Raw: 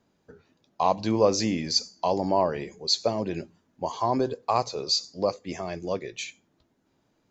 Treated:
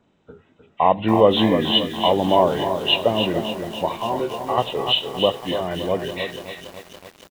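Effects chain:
hearing-aid frequency compression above 1,200 Hz 1.5 to 1
0:03.96–0:04.58: tuned comb filter 75 Hz, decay 0.17 s, harmonics all, mix 100%
single-tap delay 306 ms −8.5 dB
feedback echo at a low word length 283 ms, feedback 80%, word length 7 bits, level −12 dB
level +6.5 dB

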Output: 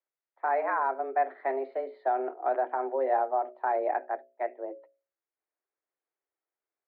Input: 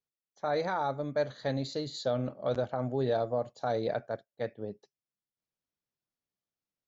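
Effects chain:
mains-hum notches 60/120/180/240/300/360/420/480/540 Hz
single-sideband voice off tune +130 Hz 210–2,100 Hz
level +3.5 dB

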